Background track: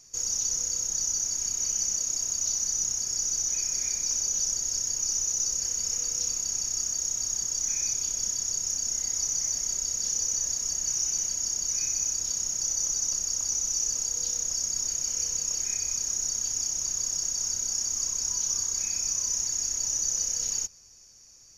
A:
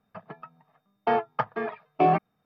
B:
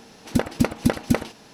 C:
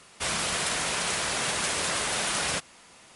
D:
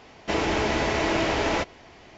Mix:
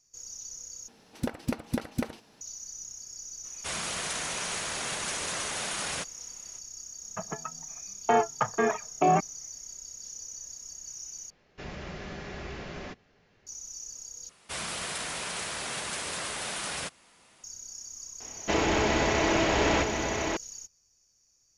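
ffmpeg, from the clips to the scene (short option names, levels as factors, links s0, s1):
-filter_complex "[3:a]asplit=2[s0][s1];[4:a]asplit=2[s2][s3];[0:a]volume=0.2[s4];[1:a]alimiter=level_in=8.41:limit=0.891:release=50:level=0:latency=1[s5];[s2]afreqshift=-260[s6];[s3]aecho=1:1:1034:0.562[s7];[s4]asplit=4[s8][s9][s10][s11];[s8]atrim=end=0.884[s12];[2:a]atrim=end=1.53,asetpts=PTS-STARTPTS,volume=0.299[s13];[s9]atrim=start=2.406:end=11.304[s14];[s6]atrim=end=2.17,asetpts=PTS-STARTPTS,volume=0.168[s15];[s10]atrim=start=13.466:end=14.294[s16];[s1]atrim=end=3.15,asetpts=PTS-STARTPTS,volume=0.473[s17];[s11]atrim=start=17.436[s18];[s0]atrim=end=3.15,asetpts=PTS-STARTPTS,volume=0.531,afade=t=in:d=0.004:c=hsin,afade=t=out:st=3.146:d=0.004:c=hsin,adelay=3440[s19];[s5]atrim=end=2.45,asetpts=PTS-STARTPTS,volume=0.224,afade=t=in:d=0.004:c=hsin,afade=t=out:st=2.446:d=0.004:c=hsin,adelay=7020[s20];[s7]atrim=end=2.17,asetpts=PTS-STARTPTS,volume=0.891,afade=t=in:d=0.004:c=hsin,afade=t=out:st=2.166:d=0.004:c=hsin,adelay=18200[s21];[s12][s13]acrossfade=d=0.004:c1=hsin:c2=hsin[s22];[s22][s14]acrossfade=d=0.004:c1=hsin:c2=hsin[s23];[s23][s15]acrossfade=d=0.004:c1=hsin:c2=hsin[s24];[s24][s16]acrossfade=d=0.004:c1=hsin:c2=hsin[s25];[s25][s17]acrossfade=d=0.004:c1=hsin:c2=hsin[s26];[s26][s18]acrossfade=d=0.004:c1=hsin:c2=hsin[s27];[s27][s19][s20][s21]amix=inputs=4:normalize=0"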